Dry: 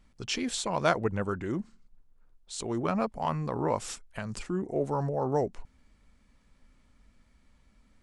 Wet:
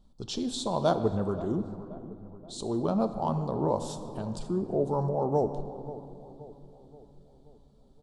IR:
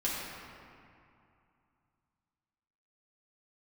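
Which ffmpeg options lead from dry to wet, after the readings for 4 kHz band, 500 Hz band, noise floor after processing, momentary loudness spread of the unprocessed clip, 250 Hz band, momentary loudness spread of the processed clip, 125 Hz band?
-2.0 dB, +2.0 dB, -58 dBFS, 11 LU, +2.5 dB, 17 LU, +2.0 dB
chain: -filter_complex "[0:a]firequalizer=gain_entry='entry(800,0);entry(2100,-26);entry(3600,0);entry(5600,-7)':delay=0.05:min_phase=1,asplit=2[a][b];[b]adelay=528,lowpass=f=1.2k:p=1,volume=-15dB,asplit=2[c][d];[d]adelay=528,lowpass=f=1.2k:p=1,volume=0.55,asplit=2[e][f];[f]adelay=528,lowpass=f=1.2k:p=1,volume=0.55,asplit=2[g][h];[h]adelay=528,lowpass=f=1.2k:p=1,volume=0.55,asplit=2[i][j];[j]adelay=528,lowpass=f=1.2k:p=1,volume=0.55[k];[a][c][e][g][i][k]amix=inputs=6:normalize=0,asplit=2[l][m];[1:a]atrim=start_sample=2205,highshelf=f=9.1k:g=8[n];[m][n]afir=irnorm=-1:irlink=0,volume=-13.5dB[o];[l][o]amix=inputs=2:normalize=0"

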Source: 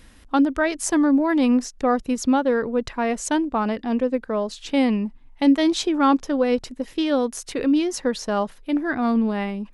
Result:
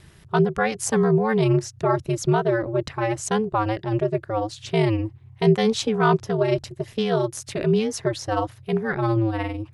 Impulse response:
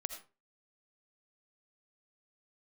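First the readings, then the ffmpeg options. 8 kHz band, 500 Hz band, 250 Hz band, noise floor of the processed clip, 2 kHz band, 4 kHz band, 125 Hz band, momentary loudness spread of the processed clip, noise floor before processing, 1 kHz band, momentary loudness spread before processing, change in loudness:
-1.0 dB, +2.0 dB, -5.0 dB, -50 dBFS, -0.5 dB, -1.0 dB, n/a, 7 LU, -49 dBFS, -0.5 dB, 7 LU, -1.0 dB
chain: -af "aeval=exprs='val(0)*sin(2*PI*110*n/s)':c=same,volume=2dB"

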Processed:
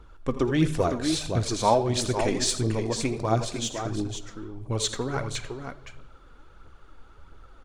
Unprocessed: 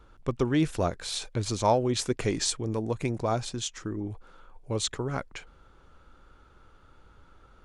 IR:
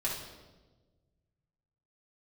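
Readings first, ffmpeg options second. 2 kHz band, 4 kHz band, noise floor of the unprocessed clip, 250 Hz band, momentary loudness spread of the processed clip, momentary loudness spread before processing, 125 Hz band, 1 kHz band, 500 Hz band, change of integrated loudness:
+3.5 dB, +3.0 dB, -58 dBFS, +3.0 dB, 15 LU, 11 LU, +3.0 dB, +3.5 dB, +2.5 dB, +2.5 dB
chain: -filter_complex "[0:a]aecho=1:1:81|86|509:0.2|0.133|0.422,asplit=2[a][b];[1:a]atrim=start_sample=2205[c];[b][c]afir=irnorm=-1:irlink=0,volume=-15dB[d];[a][d]amix=inputs=2:normalize=0,aphaser=in_gain=1:out_gain=1:delay=4.5:decay=0.44:speed=1.5:type=triangular"

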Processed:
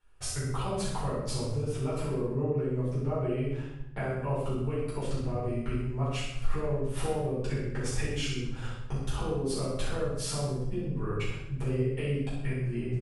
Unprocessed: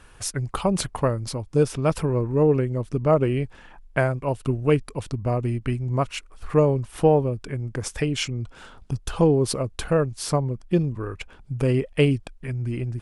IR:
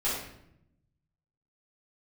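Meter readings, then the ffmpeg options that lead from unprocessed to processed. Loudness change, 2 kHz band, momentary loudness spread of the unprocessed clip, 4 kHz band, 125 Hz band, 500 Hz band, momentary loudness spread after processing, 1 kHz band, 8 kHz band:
-8.5 dB, -7.5 dB, 11 LU, -5.5 dB, -7.0 dB, -10.0 dB, 5 LU, -9.0 dB, -6.0 dB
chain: -filter_complex "[0:a]agate=range=-22dB:threshold=-43dB:ratio=16:detection=peak,alimiter=limit=-17.5dB:level=0:latency=1:release=356,acompressor=threshold=-32dB:ratio=6,aecho=1:1:64|128|192|256|320:0.422|0.198|0.0932|0.0438|0.0206[a];[1:a]atrim=start_sample=2205[b];[a][b]afir=irnorm=-1:irlink=0,volume=-6dB"

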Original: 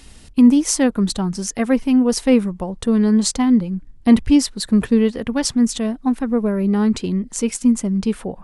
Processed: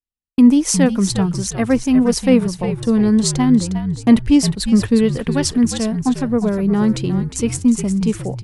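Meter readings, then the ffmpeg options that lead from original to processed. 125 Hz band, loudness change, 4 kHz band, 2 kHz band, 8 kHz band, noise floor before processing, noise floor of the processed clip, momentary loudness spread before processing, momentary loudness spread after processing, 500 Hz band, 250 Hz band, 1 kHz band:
+6.0 dB, +1.5 dB, +1.5 dB, +1.5 dB, +1.5 dB, -43 dBFS, -39 dBFS, 9 LU, 7 LU, +1.5 dB, +1.5 dB, +1.5 dB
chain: -filter_complex "[0:a]agate=range=-55dB:threshold=-29dB:ratio=16:detection=peak,asplit=5[a][b][c][d][e];[b]adelay=358,afreqshift=-64,volume=-9dB[f];[c]adelay=716,afreqshift=-128,volume=-18.9dB[g];[d]adelay=1074,afreqshift=-192,volume=-28.8dB[h];[e]adelay=1432,afreqshift=-256,volume=-38.7dB[i];[a][f][g][h][i]amix=inputs=5:normalize=0,volume=1dB"

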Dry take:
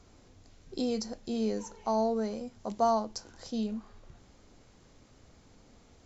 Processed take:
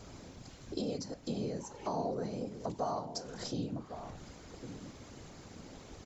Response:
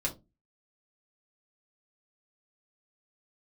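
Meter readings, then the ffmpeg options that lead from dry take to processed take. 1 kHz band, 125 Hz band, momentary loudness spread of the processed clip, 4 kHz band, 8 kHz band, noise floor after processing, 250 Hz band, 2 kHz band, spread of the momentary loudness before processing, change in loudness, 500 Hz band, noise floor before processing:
-7.0 dB, +4.5 dB, 15 LU, -2.0 dB, n/a, -53 dBFS, -6.0 dB, -0.5 dB, 13 LU, -7.0 dB, -6.5 dB, -60 dBFS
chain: -filter_complex "[0:a]highpass=44,acompressor=threshold=-48dB:ratio=3,afftfilt=real='hypot(re,im)*cos(2*PI*random(0))':imag='hypot(re,im)*sin(2*PI*random(1))':win_size=512:overlap=0.75,asplit=2[a][b];[b]adelay=1108,volume=-10dB,highshelf=f=4k:g=-24.9[c];[a][c]amix=inputs=2:normalize=0,volume=14.5dB"

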